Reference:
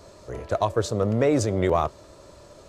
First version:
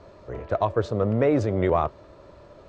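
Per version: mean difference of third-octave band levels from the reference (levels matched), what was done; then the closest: 3.0 dB: low-pass 2.7 kHz 12 dB/octave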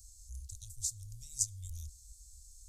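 21.0 dB: inverse Chebyshev band-stop 210–1800 Hz, stop band 70 dB; trim +5.5 dB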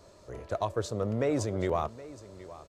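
1.5 dB: delay 769 ms -17.5 dB; trim -7.5 dB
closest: third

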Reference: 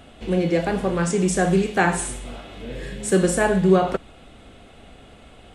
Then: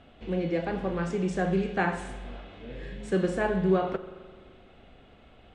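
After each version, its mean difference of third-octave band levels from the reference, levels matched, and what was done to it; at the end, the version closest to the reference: 3.0 dB: low-pass 3.7 kHz 12 dB/octave; spring tank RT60 1.8 s, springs 42 ms, chirp 25 ms, DRR 13.5 dB; trim -8 dB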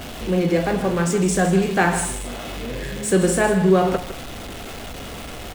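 7.5 dB: jump at every zero crossing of -29.5 dBFS; delay 157 ms -11.5 dB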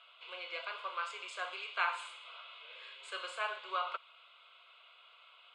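13.0 dB: elliptic band-pass 890–5500 Hz, stop band 70 dB; static phaser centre 1.2 kHz, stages 8; trim -4 dB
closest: first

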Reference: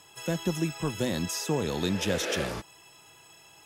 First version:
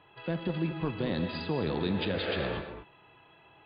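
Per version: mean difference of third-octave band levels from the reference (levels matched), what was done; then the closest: 9.5 dB: local Wiener filter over 9 samples; peak limiter -21.5 dBFS, peak gain reduction 6.5 dB; brick-wall FIR low-pass 4.9 kHz; gated-style reverb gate 250 ms rising, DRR 7.5 dB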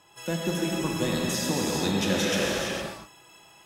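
6.0 dB: peaking EQ 84 Hz -5.5 dB 1.7 oct; band-stop 440 Hz, Q 12; gated-style reverb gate 480 ms flat, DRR -2.5 dB; tape noise reduction on one side only decoder only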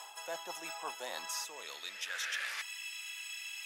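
12.5 dB: time-frequency box 1.44–2.06 s, 700–1800 Hz -9 dB; bass shelf 210 Hz -11 dB; reverse; compression 8:1, threshold -44 dBFS, peak gain reduction 18 dB; reverse; high-pass sweep 770 Hz -> 2.3 kHz, 1.00–2.84 s; trim +7.5 dB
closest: second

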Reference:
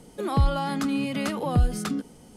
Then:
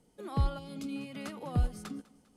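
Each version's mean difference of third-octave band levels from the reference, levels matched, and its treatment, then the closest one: 3.5 dB: time-frequency box 0.59–0.96 s, 630–2100 Hz -16 dB; on a send: thinning echo 200 ms, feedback 52%, high-pass 150 Hz, level -16.5 dB; on the sum: upward expansion 1.5:1, over -37 dBFS; trim -7 dB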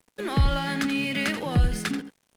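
5.5 dB: FFT filter 300 Hz 0 dB, 1.2 kHz -3 dB, 1.7 kHz +11 dB, 6.9 kHz +1 dB; crossover distortion -43.5 dBFS; on a send: delay 84 ms -10.5 dB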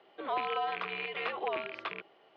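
12.0 dB: rattle on loud lows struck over -30 dBFS, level -23 dBFS; AM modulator 260 Hz, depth 35%; mistuned SSB -94 Hz 580–3500 Hz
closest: first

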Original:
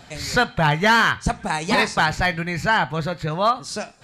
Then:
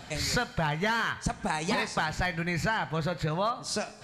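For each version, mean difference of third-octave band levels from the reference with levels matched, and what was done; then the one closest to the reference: 4.0 dB: compression, threshold -26 dBFS, peak gain reduction 13 dB; Schroeder reverb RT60 1.5 s, combs from 29 ms, DRR 18 dB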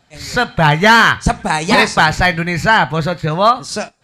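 1.5 dB: gate -32 dBFS, range -11 dB; level rider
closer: second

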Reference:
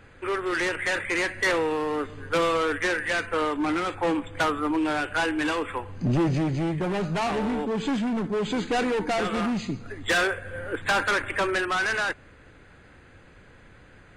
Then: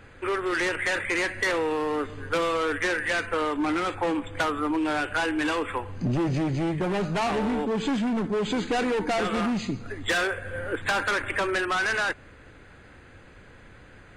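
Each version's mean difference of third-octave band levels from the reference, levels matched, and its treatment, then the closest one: 1.5 dB: peaking EQ 160 Hz -3.5 dB 0.21 oct; compression, threshold -25 dBFS, peak gain reduction 5 dB; trim +2 dB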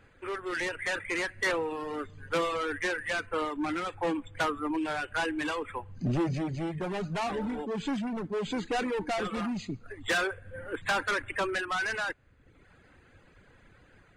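3.0 dB: reverb removal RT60 0.88 s; level rider gain up to 3 dB; trim -7.5 dB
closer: first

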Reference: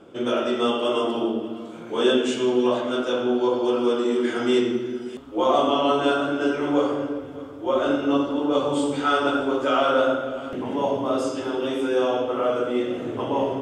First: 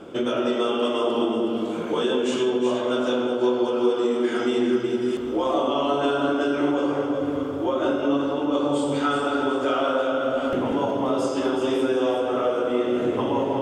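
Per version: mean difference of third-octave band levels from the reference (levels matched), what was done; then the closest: 3.0 dB: hum notches 60/120 Hz; compression 6:1, threshold -29 dBFS, peak gain reduction 13.5 dB; on a send: echo whose repeats swap between lows and highs 185 ms, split 960 Hz, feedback 58%, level -2.5 dB; on the sum: trim +7 dB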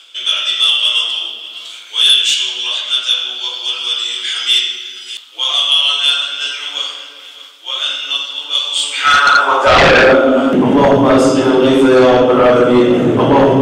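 12.5 dB: reverse; upward compressor, threshold -25 dBFS; reverse; high-pass sweep 3.4 kHz -> 140 Hz, 8.75–10.72 s; sine folder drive 12 dB, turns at -4 dBFS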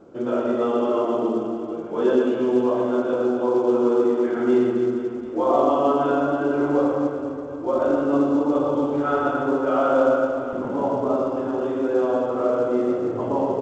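4.5 dB: low-pass 1.2 kHz 12 dB/octave; on a send: reverse bouncing-ball echo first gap 120 ms, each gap 1.3×, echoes 5; on the sum: A-law 128 kbps 16 kHz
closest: first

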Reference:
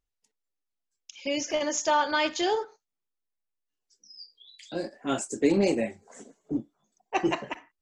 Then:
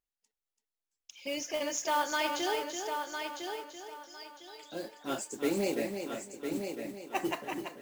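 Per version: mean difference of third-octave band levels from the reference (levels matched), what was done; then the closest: 10.0 dB: bass shelf 250 Hz -7 dB; modulation noise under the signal 18 dB; on a send: multi-head delay 335 ms, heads first and third, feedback 41%, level -7 dB; on the sum: trim -5.5 dB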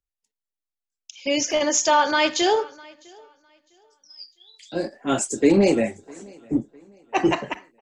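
1.5 dB: in parallel at +1.5 dB: peak limiter -19.5 dBFS, peak gain reduction 8 dB; on the sum: feedback delay 655 ms, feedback 39%, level -20 dB; three bands expanded up and down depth 40%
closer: second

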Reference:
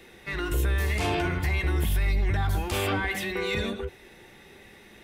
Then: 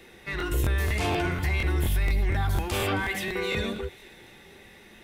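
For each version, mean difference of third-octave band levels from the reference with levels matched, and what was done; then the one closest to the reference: 1.0 dB: on a send: feedback echo behind a high-pass 268 ms, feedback 62%, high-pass 2.5 kHz, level -17 dB; on the sum: crackling interface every 0.24 s, samples 1024, repeat, from 0.38 s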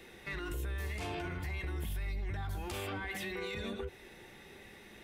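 3.5 dB: compression, threshold -31 dBFS, peak gain reduction 10 dB; peak limiter -27.5 dBFS, peak gain reduction 5 dB; trim -3 dB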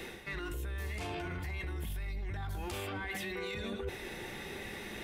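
6.5 dB: peak limiter -26.5 dBFS, peak gain reduction 9.5 dB; reverse; compression 6:1, threshold -45 dBFS, peak gain reduction 14.5 dB; reverse; trim +8 dB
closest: first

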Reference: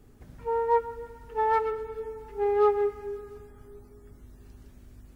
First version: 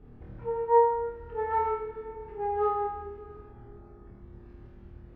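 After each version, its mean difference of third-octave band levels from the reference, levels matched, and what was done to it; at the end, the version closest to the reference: 4.0 dB: treble shelf 2.2 kHz -8 dB; in parallel at -1.5 dB: compression, threshold -43 dBFS, peak gain reduction 22 dB; on the sum: distance through air 310 m; flutter echo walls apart 4.4 m, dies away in 0.79 s; trim -3.5 dB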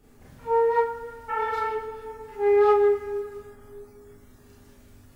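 3.0 dB: Schroeder reverb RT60 0.32 s, combs from 27 ms, DRR -5 dB; in parallel at -9 dB: overload inside the chain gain 11 dB; on the sum: spectral replace 1.32–1.62 s, 450–3200 Hz after; bass shelf 370 Hz -5.5 dB; trim -3 dB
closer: second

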